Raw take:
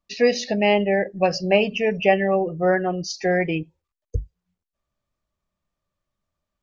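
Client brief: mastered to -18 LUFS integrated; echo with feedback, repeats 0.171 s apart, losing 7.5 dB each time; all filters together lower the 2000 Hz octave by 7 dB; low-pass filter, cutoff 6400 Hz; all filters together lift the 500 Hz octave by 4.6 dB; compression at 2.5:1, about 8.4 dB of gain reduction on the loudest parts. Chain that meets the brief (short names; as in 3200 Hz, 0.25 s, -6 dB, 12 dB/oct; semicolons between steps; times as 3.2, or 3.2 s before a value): LPF 6400 Hz; bell 500 Hz +6 dB; bell 2000 Hz -9 dB; compressor 2.5:1, threshold -21 dBFS; feedback echo 0.171 s, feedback 42%, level -7.5 dB; gain +5.5 dB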